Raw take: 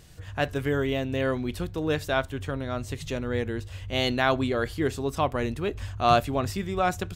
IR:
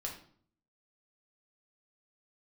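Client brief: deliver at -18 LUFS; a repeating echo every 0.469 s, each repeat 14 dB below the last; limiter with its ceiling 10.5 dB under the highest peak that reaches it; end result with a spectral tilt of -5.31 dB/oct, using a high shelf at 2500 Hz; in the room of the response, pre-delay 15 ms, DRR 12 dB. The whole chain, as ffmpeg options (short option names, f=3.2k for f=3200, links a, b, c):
-filter_complex "[0:a]highshelf=f=2.5k:g=-3.5,alimiter=limit=-17.5dB:level=0:latency=1,aecho=1:1:469|938:0.2|0.0399,asplit=2[a][b];[1:a]atrim=start_sample=2205,adelay=15[c];[b][c]afir=irnorm=-1:irlink=0,volume=-12dB[d];[a][d]amix=inputs=2:normalize=0,volume=11dB"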